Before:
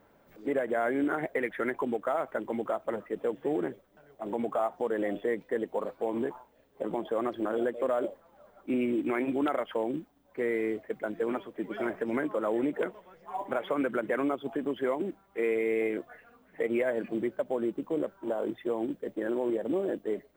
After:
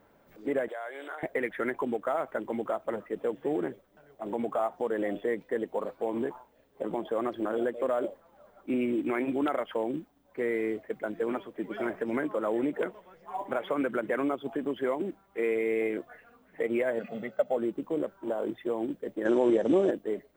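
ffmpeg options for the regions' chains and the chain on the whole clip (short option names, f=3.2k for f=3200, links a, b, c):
-filter_complex "[0:a]asettb=1/sr,asplit=3[a][b][c];[a]atrim=end=0.684[d];[b]atrim=start=0.68:end=1.23,asetpts=PTS-STARTPTS,afade=t=in:d=0.004:c=qsin,afade=t=out:st=0.546:d=0.004:c=qsin,highpass=f=530:w=0.5412,highpass=f=530:w=1.3066,equalizer=f=3.5k:t=o:w=0.37:g=7.5,acompressor=threshold=-37dB:ratio=3:attack=3.2:release=140:knee=1:detection=peak[e];[c]atrim=start=1.226[f];[d][e]acrossfade=d=0.004:c1=hsin:c2=qsin[g];[g][f]acrossfade=d=0.004:c1=qsin:c2=hsin,asettb=1/sr,asplit=3[h][i][j];[h]atrim=end=16.994[k];[i]atrim=start=16.99:end=17.57,asetpts=PTS-STARTPTS,afade=t=in:d=0.004:c=qsin,afade=t=out:st=0.576:d=0.004:c=qsin,highpass=180,equalizer=f=11k:t=o:w=0.44:g=-14,aecho=1:1:1.5:0.95,atrim=end_sample=25578[l];[j]atrim=start=17.566[m];[k][l]acrossfade=d=0.004:c1=hsin:c2=qsin[n];[n][m]acrossfade=d=0.004:c1=qsin:c2=hsin,asettb=1/sr,asplit=3[o][p][q];[o]atrim=end=19.254[r];[p]atrim=start=19.25:end=19.91,asetpts=PTS-STARTPTS,afade=t=in:d=0.004:c=qsin,afade=t=out:st=0.656:d=0.004:c=qsin,acontrast=53,lowpass=f=6k:t=q:w=6.3[s];[q]atrim=start=19.906[t];[r][s]acrossfade=d=0.004:c1=hsin:c2=qsin[u];[u][t]acrossfade=d=0.004:c1=qsin:c2=hsin"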